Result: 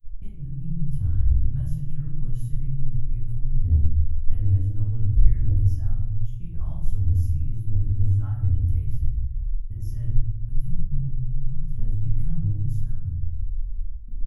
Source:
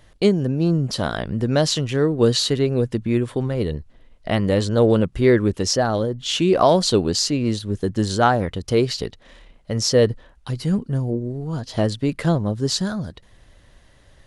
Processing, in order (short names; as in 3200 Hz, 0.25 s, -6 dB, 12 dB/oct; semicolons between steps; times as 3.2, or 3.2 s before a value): inverse Chebyshev band-stop 210–9100 Hz, stop band 50 dB; gate -52 dBFS, range -25 dB; comb 3.7 ms, depth 31%; in parallel at -5 dB: soft clip -38.5 dBFS, distortion -9 dB; on the sum: shoebox room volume 150 m³, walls mixed, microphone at 1.5 m; gain +8.5 dB